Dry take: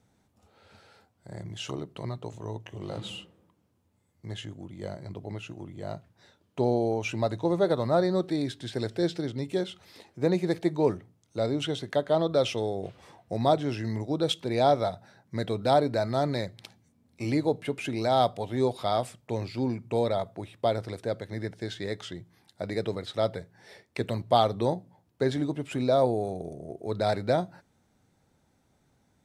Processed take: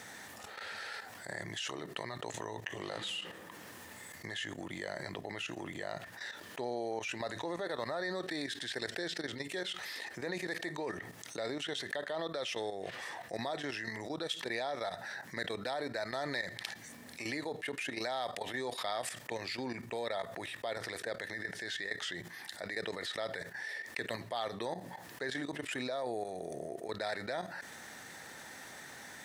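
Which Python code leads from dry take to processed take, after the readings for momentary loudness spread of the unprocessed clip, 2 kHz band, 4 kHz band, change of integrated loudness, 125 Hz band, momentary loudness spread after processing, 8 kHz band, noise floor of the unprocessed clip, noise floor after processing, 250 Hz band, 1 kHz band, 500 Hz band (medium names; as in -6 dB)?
15 LU, +3.5 dB, -2.5 dB, -10.5 dB, -17.0 dB, 8 LU, +1.0 dB, -69 dBFS, -51 dBFS, -12.5 dB, -10.5 dB, -12.0 dB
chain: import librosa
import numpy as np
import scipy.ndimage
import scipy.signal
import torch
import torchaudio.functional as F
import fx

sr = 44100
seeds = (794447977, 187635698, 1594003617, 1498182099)

y = fx.level_steps(x, sr, step_db=15)
y = fx.highpass(y, sr, hz=1200.0, slope=6)
y = fx.peak_eq(y, sr, hz=1800.0, db=14.5, octaves=0.22)
y = fx.env_flatten(y, sr, amount_pct=70)
y = y * 10.0 ** (-4.0 / 20.0)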